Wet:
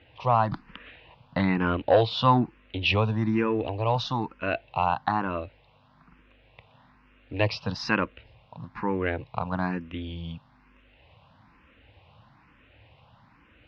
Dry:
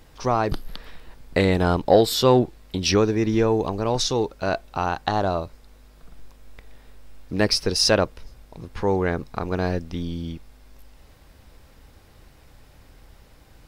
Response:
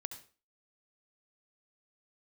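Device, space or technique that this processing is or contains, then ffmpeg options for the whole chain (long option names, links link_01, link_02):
barber-pole phaser into a guitar amplifier: -filter_complex "[0:a]asplit=2[link_01][link_02];[link_02]afreqshift=1.1[link_03];[link_01][link_03]amix=inputs=2:normalize=1,asoftclip=type=tanh:threshold=-7.5dB,highpass=93,equalizer=frequency=110:width_type=q:width=4:gain=5,equalizer=frequency=400:width_type=q:width=4:gain=-9,equalizer=frequency=1000:width_type=q:width=4:gain=6,equalizer=frequency=2700:width_type=q:width=4:gain=8,lowpass=frequency=3400:width=0.5412,lowpass=frequency=3400:width=1.3066"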